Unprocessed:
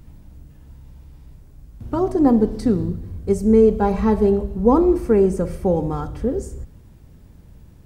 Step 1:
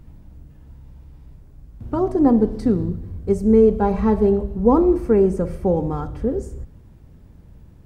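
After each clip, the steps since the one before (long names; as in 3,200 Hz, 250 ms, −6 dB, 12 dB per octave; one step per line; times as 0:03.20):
high-shelf EQ 2,900 Hz −7.5 dB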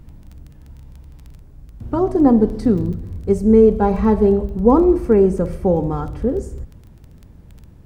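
surface crackle 14 per second −34 dBFS
level +2.5 dB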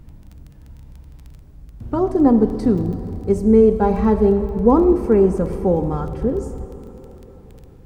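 convolution reverb RT60 4.2 s, pre-delay 72 ms, DRR 12 dB
level −1 dB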